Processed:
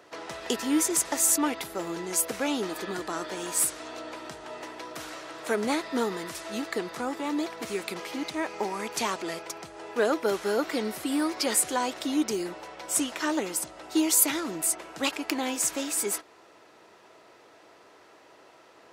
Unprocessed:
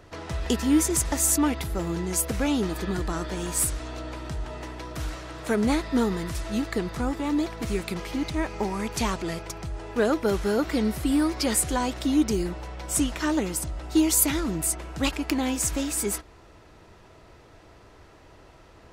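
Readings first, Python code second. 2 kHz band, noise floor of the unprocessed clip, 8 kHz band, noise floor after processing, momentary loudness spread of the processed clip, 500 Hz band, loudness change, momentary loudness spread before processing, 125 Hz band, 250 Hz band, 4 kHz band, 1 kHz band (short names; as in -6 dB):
0.0 dB, -52 dBFS, 0.0 dB, -55 dBFS, 15 LU, -1.5 dB, -2.0 dB, 13 LU, -16.0 dB, -5.5 dB, 0.0 dB, 0.0 dB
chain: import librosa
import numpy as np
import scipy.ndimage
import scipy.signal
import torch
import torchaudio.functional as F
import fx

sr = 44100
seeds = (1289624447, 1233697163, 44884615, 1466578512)

y = scipy.signal.sosfilt(scipy.signal.butter(2, 350.0, 'highpass', fs=sr, output='sos'), x)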